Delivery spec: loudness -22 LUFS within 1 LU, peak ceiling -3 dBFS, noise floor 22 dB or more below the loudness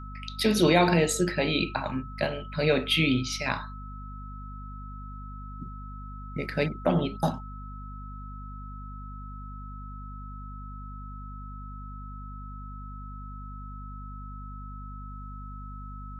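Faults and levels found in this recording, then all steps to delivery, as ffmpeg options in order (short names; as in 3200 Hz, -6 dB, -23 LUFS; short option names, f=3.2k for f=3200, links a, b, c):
hum 50 Hz; harmonics up to 250 Hz; hum level -38 dBFS; steady tone 1300 Hz; tone level -44 dBFS; loudness -26.5 LUFS; peak -8.5 dBFS; loudness target -22.0 LUFS
-> -af "bandreject=f=50:t=h:w=6,bandreject=f=100:t=h:w=6,bandreject=f=150:t=h:w=6,bandreject=f=200:t=h:w=6,bandreject=f=250:t=h:w=6"
-af "bandreject=f=1.3k:w=30"
-af "volume=4.5dB"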